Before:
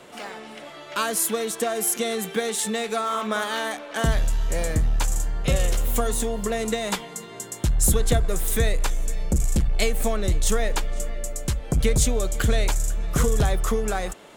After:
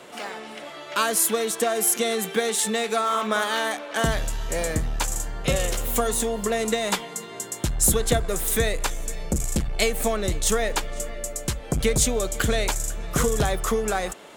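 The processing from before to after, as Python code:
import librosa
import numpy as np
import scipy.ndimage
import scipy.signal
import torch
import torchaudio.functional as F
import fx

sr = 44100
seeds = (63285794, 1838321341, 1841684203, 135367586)

y = fx.low_shelf(x, sr, hz=130.0, db=-9.5)
y = y * librosa.db_to_amplitude(2.5)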